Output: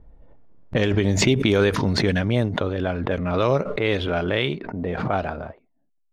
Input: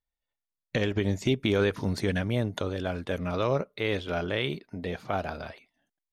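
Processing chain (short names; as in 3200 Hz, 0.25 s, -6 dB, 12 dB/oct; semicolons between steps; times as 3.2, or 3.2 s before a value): low-pass opened by the level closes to 450 Hz, open at -21 dBFS; in parallel at -11.5 dB: backlash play -43 dBFS; on the sum: backwards sustainer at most 38 dB/s; gain +4 dB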